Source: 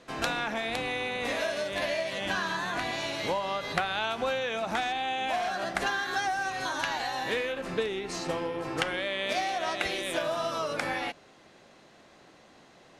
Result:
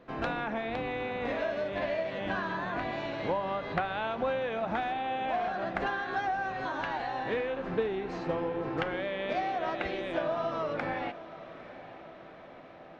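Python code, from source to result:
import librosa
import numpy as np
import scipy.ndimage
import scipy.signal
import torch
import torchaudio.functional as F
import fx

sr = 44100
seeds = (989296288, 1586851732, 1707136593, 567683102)

y = fx.spacing_loss(x, sr, db_at_10k=38)
y = fx.echo_diffused(y, sr, ms=870, feedback_pct=64, wet_db=-15.5)
y = y * librosa.db_to_amplitude(2.0)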